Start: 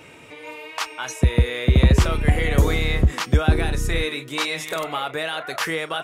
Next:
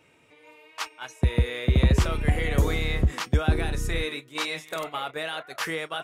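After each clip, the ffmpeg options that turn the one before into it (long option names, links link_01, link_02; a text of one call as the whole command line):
ffmpeg -i in.wav -af "agate=range=-10dB:threshold=-28dB:ratio=16:detection=peak,volume=-5dB" out.wav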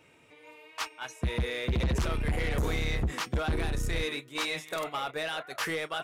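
ffmpeg -i in.wav -af "asoftclip=type=tanh:threshold=-24.5dB" out.wav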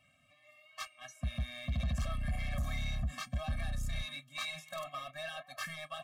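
ffmpeg -i in.wav -af "equalizer=frequency=320:width_type=o:width=2.2:gain=-4.5,afftfilt=real='re*eq(mod(floor(b*sr/1024/260),2),0)':imag='im*eq(mod(floor(b*sr/1024/260),2),0)':win_size=1024:overlap=0.75,volume=-4.5dB" out.wav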